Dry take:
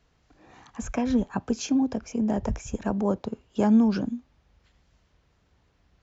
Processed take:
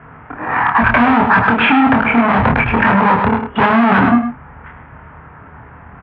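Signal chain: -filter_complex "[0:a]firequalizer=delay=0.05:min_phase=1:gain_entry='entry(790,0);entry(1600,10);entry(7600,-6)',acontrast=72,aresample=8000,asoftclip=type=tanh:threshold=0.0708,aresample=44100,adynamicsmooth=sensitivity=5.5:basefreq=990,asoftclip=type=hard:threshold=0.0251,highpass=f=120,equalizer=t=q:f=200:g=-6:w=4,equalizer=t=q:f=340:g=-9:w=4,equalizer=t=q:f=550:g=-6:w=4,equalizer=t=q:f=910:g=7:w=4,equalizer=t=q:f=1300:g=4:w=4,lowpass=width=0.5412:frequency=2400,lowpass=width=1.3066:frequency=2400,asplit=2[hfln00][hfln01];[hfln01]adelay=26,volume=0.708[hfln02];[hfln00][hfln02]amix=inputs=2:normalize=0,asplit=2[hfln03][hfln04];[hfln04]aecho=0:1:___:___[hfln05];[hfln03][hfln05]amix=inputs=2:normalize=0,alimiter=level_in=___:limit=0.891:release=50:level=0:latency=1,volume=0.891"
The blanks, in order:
103, 0.355, 18.8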